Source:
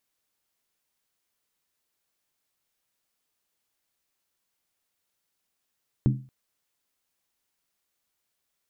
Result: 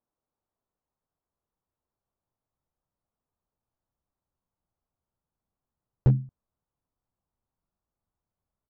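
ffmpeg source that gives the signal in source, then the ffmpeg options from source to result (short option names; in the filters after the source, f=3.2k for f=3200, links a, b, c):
-f lavfi -i "aevalsrc='0.168*pow(10,-3*t/0.37)*sin(2*PI*131*t)+0.0944*pow(10,-3*t/0.293)*sin(2*PI*208.8*t)+0.0531*pow(10,-3*t/0.253)*sin(2*PI*279.8*t)+0.0299*pow(10,-3*t/0.244)*sin(2*PI*300.8*t)+0.0168*pow(10,-3*t/0.227)*sin(2*PI*347.5*t)':d=0.23:s=44100"
-af "lowpass=f=1.1k:w=0.5412,lowpass=f=1.1k:w=1.3066,asubboost=boost=3.5:cutoff=180,aresample=16000,asoftclip=type=hard:threshold=-14dB,aresample=44100"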